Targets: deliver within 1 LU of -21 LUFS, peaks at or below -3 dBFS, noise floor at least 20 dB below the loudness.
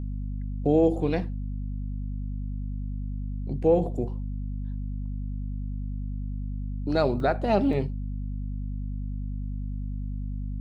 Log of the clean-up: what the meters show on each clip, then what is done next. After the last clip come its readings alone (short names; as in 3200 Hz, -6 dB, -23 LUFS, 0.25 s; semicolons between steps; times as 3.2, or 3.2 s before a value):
dropouts 2; longest dropout 1.2 ms; hum 50 Hz; harmonics up to 250 Hz; hum level -29 dBFS; loudness -29.5 LUFS; peak -9.5 dBFS; loudness target -21.0 LUFS
-> interpolate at 7.2/7.73, 1.2 ms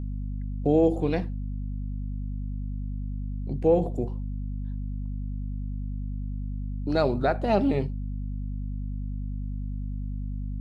dropouts 0; hum 50 Hz; harmonics up to 250 Hz; hum level -29 dBFS
-> de-hum 50 Hz, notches 5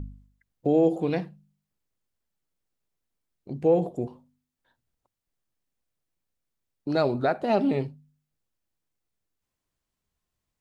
hum none; loudness -25.5 LUFS; peak -10.0 dBFS; loudness target -21.0 LUFS
-> gain +4.5 dB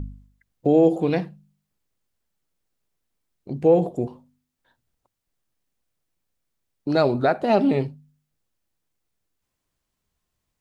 loudness -21.0 LUFS; peak -5.5 dBFS; noise floor -80 dBFS